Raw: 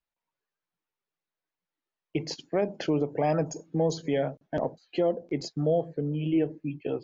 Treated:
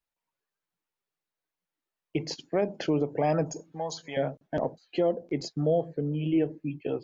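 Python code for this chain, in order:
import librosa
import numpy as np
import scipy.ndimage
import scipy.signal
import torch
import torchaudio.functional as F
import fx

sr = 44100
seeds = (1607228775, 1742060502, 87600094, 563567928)

y = fx.low_shelf_res(x, sr, hz=580.0, db=-12.5, q=1.5, at=(3.72, 4.17))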